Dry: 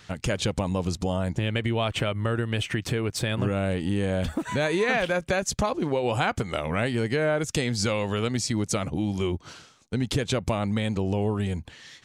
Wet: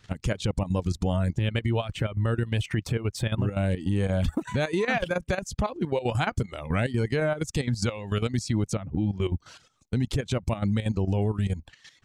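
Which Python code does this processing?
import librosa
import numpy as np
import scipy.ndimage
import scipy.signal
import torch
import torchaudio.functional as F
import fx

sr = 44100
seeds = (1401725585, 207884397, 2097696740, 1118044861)

y = fx.dereverb_blind(x, sr, rt60_s=0.62)
y = fx.low_shelf(y, sr, hz=160.0, db=10.5)
y = fx.level_steps(y, sr, step_db=12)
y = fx.spacing_loss(y, sr, db_at_10k=24, at=(8.72, 9.21), fade=0.02)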